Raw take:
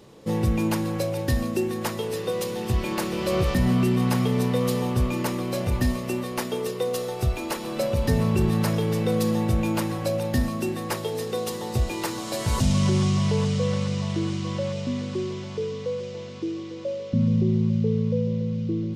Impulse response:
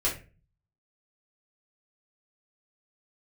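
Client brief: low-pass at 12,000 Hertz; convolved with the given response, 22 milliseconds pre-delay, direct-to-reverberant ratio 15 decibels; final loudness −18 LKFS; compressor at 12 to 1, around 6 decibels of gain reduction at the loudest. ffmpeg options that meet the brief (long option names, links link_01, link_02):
-filter_complex "[0:a]lowpass=12000,acompressor=threshold=-23dB:ratio=12,asplit=2[link_01][link_02];[1:a]atrim=start_sample=2205,adelay=22[link_03];[link_02][link_03]afir=irnorm=-1:irlink=0,volume=-23.5dB[link_04];[link_01][link_04]amix=inputs=2:normalize=0,volume=11dB"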